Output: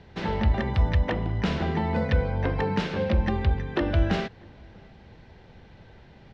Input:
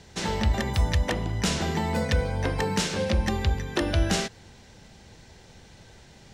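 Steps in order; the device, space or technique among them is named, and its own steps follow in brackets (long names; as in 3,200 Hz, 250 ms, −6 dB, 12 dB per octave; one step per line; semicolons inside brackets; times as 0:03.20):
shout across a valley (high-frequency loss of the air 330 metres; slap from a distant wall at 110 metres, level −28 dB)
level +1.5 dB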